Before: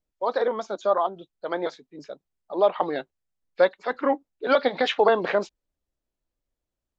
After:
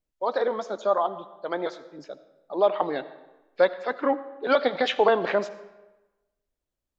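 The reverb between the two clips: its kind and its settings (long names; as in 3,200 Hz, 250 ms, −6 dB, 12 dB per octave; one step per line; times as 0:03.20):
comb and all-pass reverb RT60 1.1 s, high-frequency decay 0.75×, pre-delay 35 ms, DRR 14.5 dB
level −1 dB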